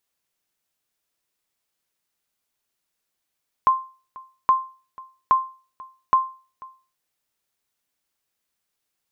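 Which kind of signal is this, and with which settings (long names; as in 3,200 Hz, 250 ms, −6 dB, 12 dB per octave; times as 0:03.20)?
ping with an echo 1,050 Hz, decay 0.36 s, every 0.82 s, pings 4, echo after 0.49 s, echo −23 dB −9 dBFS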